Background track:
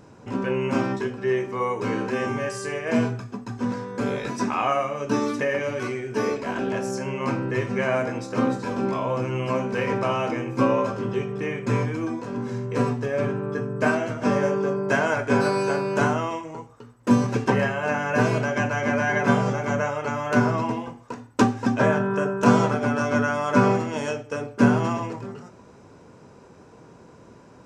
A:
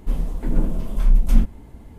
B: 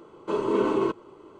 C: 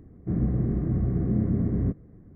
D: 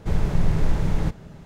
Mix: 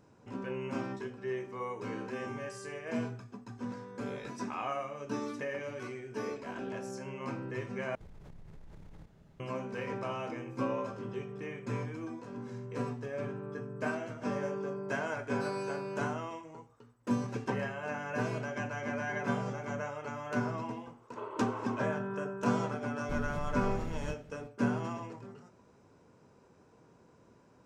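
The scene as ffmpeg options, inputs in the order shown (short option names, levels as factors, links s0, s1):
-filter_complex "[4:a]asplit=2[s0][s1];[0:a]volume=0.224[s2];[s0]acompressor=threshold=0.0316:ratio=12:attack=4.2:release=34:knee=1:detection=rms[s3];[2:a]acrossover=split=490 2600:gain=0.0891 1 0.0891[s4][s5][s6];[s4][s5][s6]amix=inputs=3:normalize=0[s7];[s1]acompressor=threshold=0.112:ratio=6:attack=3.2:release=140:knee=1:detection=peak[s8];[s2]asplit=2[s9][s10];[s9]atrim=end=7.954[s11];[s3]atrim=end=1.45,asetpts=PTS-STARTPTS,volume=0.133[s12];[s10]atrim=start=9.396[s13];[s7]atrim=end=1.39,asetpts=PTS-STARTPTS,volume=0.355,afade=t=in:d=0.004:c=hsin,afade=t=out:st=1.386:d=0.004:c=hsin,adelay=20880[s14];[s8]atrim=end=1.45,asetpts=PTS-STARTPTS,volume=0.224,afade=t=in:d=0.004:c=hsin,afade=t=out:st=1.446:d=0.004:c=hsin,adelay=23030[s15];[s11][s12]acrossfade=d=0.004:c1=hsin:c2=hsin[s16];[s16][s13]acrossfade=d=0.004:c1=hsin:c2=hsin[s17];[s17][s14][s15]amix=inputs=3:normalize=0"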